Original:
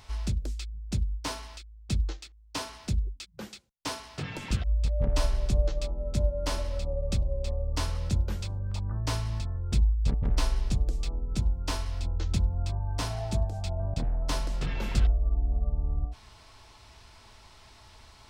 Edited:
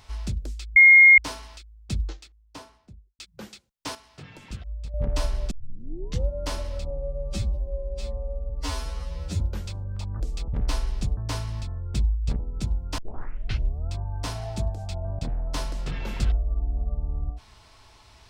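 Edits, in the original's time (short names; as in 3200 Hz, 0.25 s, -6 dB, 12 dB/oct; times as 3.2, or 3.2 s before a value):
0.76–1.18 bleep 2140 Hz -8.5 dBFS
1.98–3.19 studio fade out
3.95–4.94 gain -8.5 dB
5.51 tape start 0.78 s
6.9–8.15 stretch 2×
8.95–10.17 swap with 10.86–11.14
11.73 tape start 0.93 s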